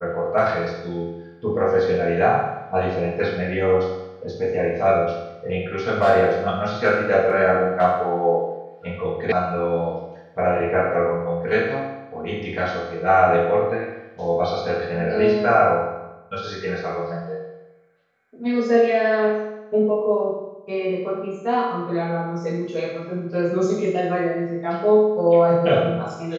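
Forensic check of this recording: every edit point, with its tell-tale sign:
9.32 sound cut off

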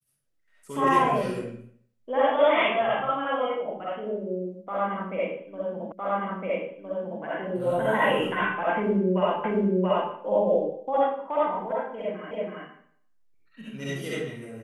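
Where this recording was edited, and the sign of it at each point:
5.92 repeat of the last 1.31 s
9.44 repeat of the last 0.68 s
12.31 repeat of the last 0.33 s

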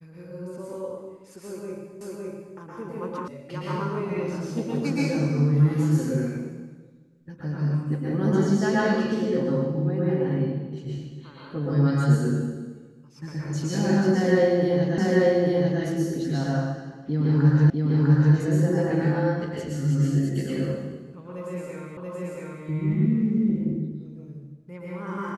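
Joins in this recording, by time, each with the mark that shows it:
2.01 repeat of the last 0.56 s
3.28 sound cut off
14.98 repeat of the last 0.84 s
17.7 repeat of the last 0.65 s
21.97 repeat of the last 0.68 s

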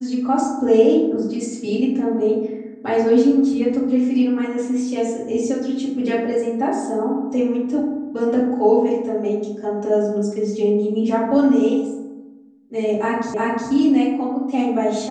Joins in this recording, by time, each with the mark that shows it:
13.34 repeat of the last 0.36 s

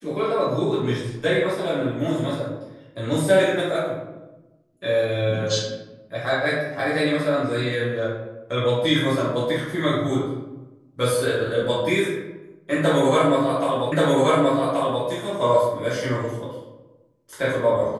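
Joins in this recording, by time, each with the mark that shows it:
13.92 repeat of the last 1.13 s

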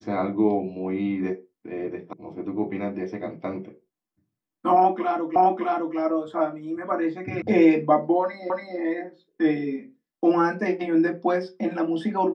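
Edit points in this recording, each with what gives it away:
2.13 sound cut off
5.36 repeat of the last 0.61 s
7.42 sound cut off
8.5 repeat of the last 0.28 s

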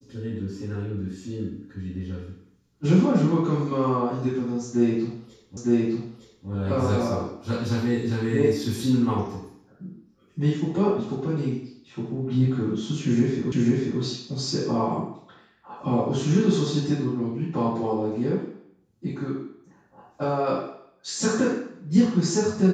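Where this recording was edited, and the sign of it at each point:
5.57 repeat of the last 0.91 s
13.52 repeat of the last 0.49 s

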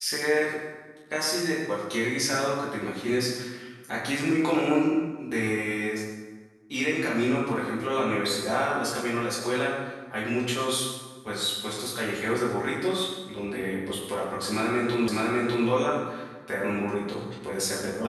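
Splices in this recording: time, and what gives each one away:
15.08 repeat of the last 0.6 s

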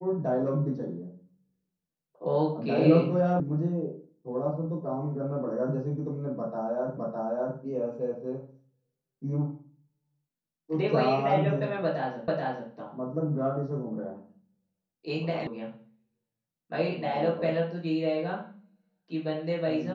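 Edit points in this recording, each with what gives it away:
3.4 sound cut off
6.97 repeat of the last 0.61 s
12.28 repeat of the last 0.43 s
15.47 sound cut off

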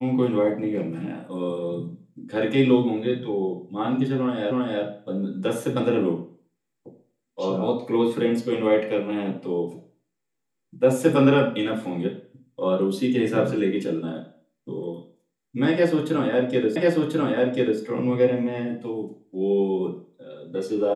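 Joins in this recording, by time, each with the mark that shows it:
4.51 repeat of the last 0.32 s
16.76 repeat of the last 1.04 s

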